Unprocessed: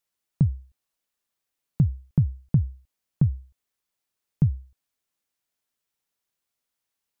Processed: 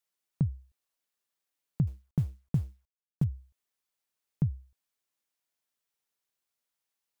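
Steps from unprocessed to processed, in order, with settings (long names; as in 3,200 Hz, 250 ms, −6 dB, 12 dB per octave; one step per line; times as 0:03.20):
0:01.87–0:03.24: mu-law and A-law mismatch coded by A
low-shelf EQ 220 Hz −6 dB
level −3 dB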